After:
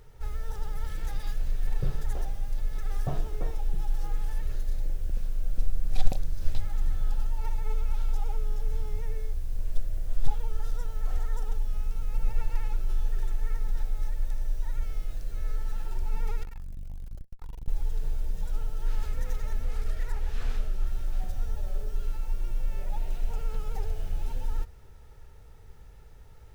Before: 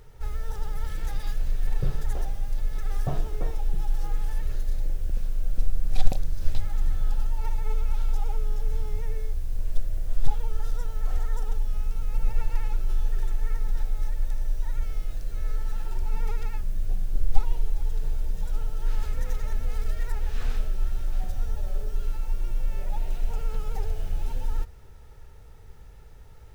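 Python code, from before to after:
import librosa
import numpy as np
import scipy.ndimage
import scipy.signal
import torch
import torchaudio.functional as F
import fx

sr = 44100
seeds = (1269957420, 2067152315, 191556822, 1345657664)

y = fx.tube_stage(x, sr, drive_db=31.0, bias=0.75, at=(16.43, 17.68))
y = fx.doppler_dist(y, sr, depth_ms=0.37, at=(19.63, 20.86))
y = y * librosa.db_to_amplitude(-2.5)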